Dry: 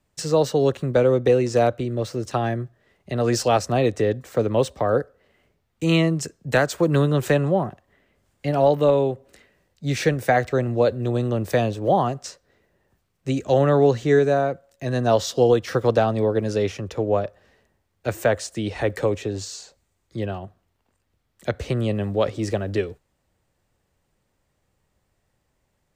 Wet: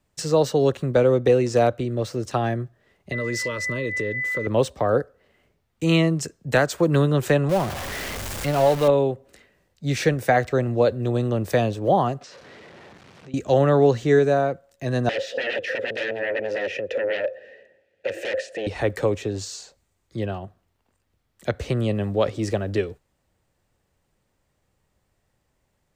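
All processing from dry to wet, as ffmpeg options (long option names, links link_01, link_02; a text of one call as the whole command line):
ffmpeg -i in.wav -filter_complex "[0:a]asettb=1/sr,asplit=3[link_01][link_02][link_03];[link_01]atrim=end=3.124[link_04];[link_02]atrim=start=3.12:end=4.47,asetpts=PTS-STARTPTS,afade=type=in:duration=0.004:curve=qsin,afade=type=out:start_time=1.346:duration=0.004:curve=qsin,aeval=exprs='val(0)+0.0708*sin(2*PI*2000*n/s)':channel_layout=same,acompressor=threshold=-23dB:ratio=4:attack=3.2:release=140:knee=1:detection=peak,asuperstop=centerf=760:order=12:qfactor=2.6[link_05];[link_03]atrim=start=4.466[link_06];[link_04][link_05]acrossfade=duration=0.004:curve1=hsin:curve2=qsin[link_07];[link_07][link_06]acrossfade=duration=0.004:curve1=qsin:curve2=hsin,asettb=1/sr,asplit=3[link_08][link_09][link_10];[link_08]atrim=end=7.494[link_11];[link_09]atrim=start=7.49:end=8.88,asetpts=PTS-STARTPTS,afade=type=in:duration=0.004:curve=qsin,afade=type=out:start_time=1.386:duration=0.004:curve=qsin,aeval=exprs='val(0)+0.5*0.0631*sgn(val(0))':channel_layout=same,equalizer=frequency=230:width=0.48:gain=-4[link_12];[link_10]atrim=start=8.876[link_13];[link_11][link_12]acrossfade=duration=0.004:curve1=hsin:curve2=qsin[link_14];[link_14][link_13]acrossfade=duration=0.004:curve1=qsin:curve2=hsin,asettb=1/sr,asplit=3[link_15][link_16][link_17];[link_15]atrim=end=12.214[link_18];[link_16]atrim=start=12.21:end=13.34,asetpts=PTS-STARTPTS,afade=type=in:duration=0.004:curve=qsin,afade=type=out:start_time=1.126:duration=0.004:curve=qsin,aeval=exprs='val(0)+0.5*0.0112*sgn(val(0))':channel_layout=same,highpass=140,lowpass=4000,acompressor=threshold=-41dB:ratio=6:attack=3.2:release=140:knee=1:detection=peak[link_19];[link_17]atrim=start=13.336[link_20];[link_18][link_19]acrossfade=duration=0.004:curve1=hsin:curve2=qsin[link_21];[link_21][link_20]acrossfade=duration=0.004:curve1=qsin:curve2=hsin,asettb=1/sr,asplit=3[link_22][link_23][link_24];[link_22]atrim=end=15.094[link_25];[link_23]atrim=start=15.09:end=18.67,asetpts=PTS-STARTPTS,afade=type=in:duration=0.004:curve=qsin,afade=type=out:start_time=3.576:duration=0.004:curve=qsin,aeval=exprs='0.447*sin(PI/2*7.08*val(0)/0.447)':channel_layout=same,acompressor=threshold=-14dB:ratio=4:attack=3.2:release=140:knee=1:detection=peak,asplit=3[link_26][link_27][link_28];[link_26]bandpass=frequency=530:width_type=q:width=8,volume=0dB[link_29];[link_27]bandpass=frequency=1840:width_type=q:width=8,volume=-6dB[link_30];[link_28]bandpass=frequency=2480:width_type=q:width=8,volume=-9dB[link_31];[link_29][link_30][link_31]amix=inputs=3:normalize=0[link_32];[link_24]atrim=start=18.666[link_33];[link_25][link_32]acrossfade=duration=0.004:curve1=hsin:curve2=qsin[link_34];[link_34][link_33]acrossfade=duration=0.004:curve1=qsin:curve2=hsin" out.wav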